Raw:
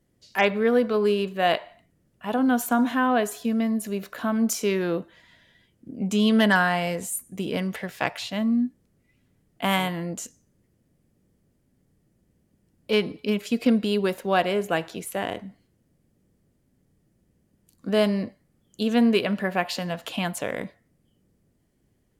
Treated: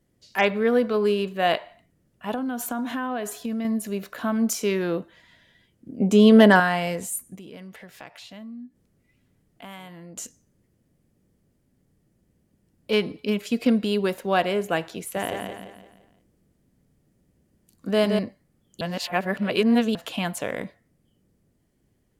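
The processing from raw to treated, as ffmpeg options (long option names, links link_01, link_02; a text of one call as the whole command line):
ffmpeg -i in.wav -filter_complex "[0:a]asettb=1/sr,asplit=3[link_01][link_02][link_03];[link_01]atrim=end=2.344[link_04];[link_02]atrim=start=2.34:end=3.65,asetpts=PTS-STARTPTS,afade=type=in:duration=0.004:curve=qsin,afade=type=out:start_time=1.306:duration=0.004:curve=qsin,acompressor=threshold=-25dB:ratio=6:attack=3.2:release=140:knee=1:detection=peak[link_05];[link_03]atrim=start=3.646[link_06];[link_04][link_05]acrossfade=duration=0.004:curve1=hsin:curve2=qsin[link_07];[link_07][link_06]acrossfade=duration=0.004:curve1=qsin:curve2=hsin,asettb=1/sr,asplit=3[link_08][link_09][link_10];[link_08]atrim=end=6.004[link_11];[link_09]atrim=start=6:end=6.6,asetpts=PTS-STARTPTS,afade=type=in:duration=0.004:curve=qsin,afade=type=out:start_time=0.596:duration=0.004:curve=qsin,equalizer=frequency=420:width_type=o:width=2.1:gain=10.5[link_12];[link_10]atrim=start=6.596[link_13];[link_11][link_12]acrossfade=duration=0.004:curve1=hsin:curve2=qsin[link_14];[link_14][link_13]acrossfade=duration=0.004:curve1=qsin:curve2=hsin,asettb=1/sr,asplit=3[link_15][link_16][link_17];[link_15]atrim=end=7.354[link_18];[link_16]atrim=start=7.35:end=10.17,asetpts=PTS-STARTPTS,afade=type=in:duration=0.004:curve=qsin,afade=type=out:start_time=2.816:duration=0.004:curve=qsin,acompressor=threshold=-46dB:ratio=2.5:attack=3.2:release=140:knee=1:detection=peak[link_19];[link_17]atrim=start=10.166[link_20];[link_18][link_19]acrossfade=duration=0.004:curve1=hsin:curve2=qsin[link_21];[link_21][link_20]acrossfade=duration=0.004:curve1=qsin:curve2=hsin,asettb=1/sr,asplit=3[link_22][link_23][link_24];[link_22]atrim=end=14.994[link_25];[link_23]atrim=start=14.99:end=18.19,asetpts=PTS-STARTPTS,afade=type=in:duration=0.004:curve=qsin,afade=type=out:start_time=3.196:duration=0.004:curve=qsin,aecho=1:1:171|342|513|684|855:0.562|0.231|0.0945|0.0388|0.0159,atrim=end_sample=141120[link_26];[link_24]atrim=start=18.186[link_27];[link_25][link_26]acrossfade=duration=0.004:curve1=hsin:curve2=qsin[link_28];[link_28][link_27]acrossfade=duration=0.004:curve1=qsin:curve2=hsin,asplit=3[link_29][link_30][link_31];[link_29]atrim=end=18.812[link_32];[link_30]atrim=start=18.808:end=19.952,asetpts=PTS-STARTPTS,areverse[link_33];[link_31]atrim=start=19.948[link_34];[link_32][link_33]acrossfade=duration=0.004:curve1=hsin:curve2=hsin[link_35];[link_35][link_34]acrossfade=duration=0.004:curve1=hsin:curve2=hsin" out.wav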